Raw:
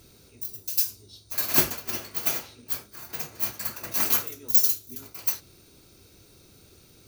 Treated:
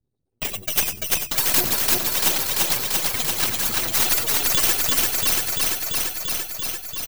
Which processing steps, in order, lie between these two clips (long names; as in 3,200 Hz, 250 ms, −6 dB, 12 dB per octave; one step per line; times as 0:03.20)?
expanding power law on the bin magnitudes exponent 2.9
noise gate −46 dBFS, range −39 dB
feedback echo with a high-pass in the loop 341 ms, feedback 69%, level −3 dB
half-wave rectification
single-tap delay 94 ms −19 dB
boost into a limiter +9.5 dB
every bin compressed towards the loudest bin 2 to 1
level −1 dB